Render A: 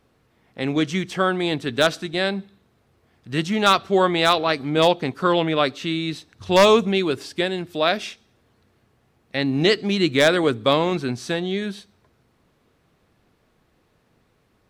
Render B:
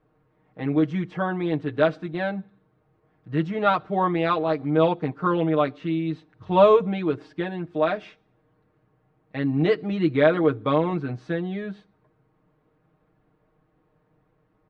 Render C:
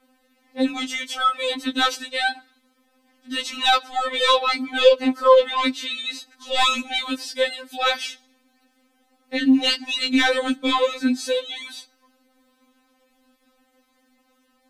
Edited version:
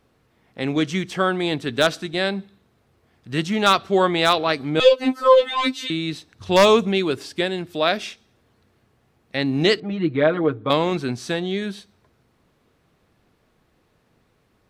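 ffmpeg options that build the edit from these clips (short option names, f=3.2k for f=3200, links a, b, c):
-filter_complex "[0:a]asplit=3[a][b][c];[a]atrim=end=4.802[d];[2:a]atrim=start=4.798:end=5.902[e];[b]atrim=start=5.898:end=9.802[f];[1:a]atrim=start=9.798:end=10.702[g];[c]atrim=start=10.698[h];[d][e]acrossfade=d=0.004:c1=hsin:c2=hsin[i];[i][f]acrossfade=d=0.004:c1=hsin:c2=hsin[j];[j][g]acrossfade=d=0.004:c1=hsin:c2=hsin[k];[k][h]acrossfade=d=0.004:c1=hsin:c2=hsin"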